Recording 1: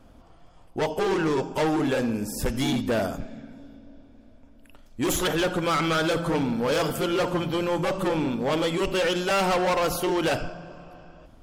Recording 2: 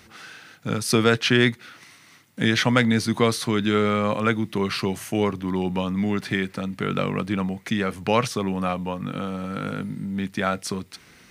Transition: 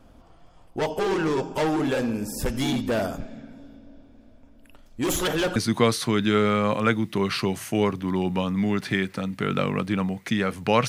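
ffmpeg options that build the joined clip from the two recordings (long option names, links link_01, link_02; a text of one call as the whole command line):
ffmpeg -i cue0.wav -i cue1.wav -filter_complex "[0:a]apad=whole_dur=10.88,atrim=end=10.88,atrim=end=5.562[link_01];[1:a]atrim=start=2.958:end=8.28[link_02];[link_01][link_02]acrossfade=duration=0.004:curve1=hsin:curve2=hsin" out.wav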